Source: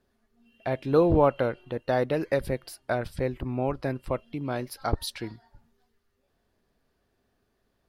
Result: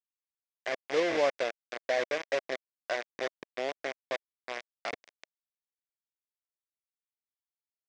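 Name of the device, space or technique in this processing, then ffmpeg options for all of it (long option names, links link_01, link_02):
hand-held game console: -af "acrusher=bits=3:mix=0:aa=0.000001,highpass=500,equalizer=frequency=630:width_type=q:width=4:gain=3,equalizer=frequency=890:width_type=q:width=4:gain=-9,equalizer=frequency=1300:width_type=q:width=4:gain=-8,equalizer=frequency=2100:width_type=q:width=4:gain=4,equalizer=frequency=2900:width_type=q:width=4:gain=-5,equalizer=frequency=4200:width_type=q:width=4:gain=-7,lowpass=frequency=5000:width=0.5412,lowpass=frequency=5000:width=1.3066,volume=-3.5dB"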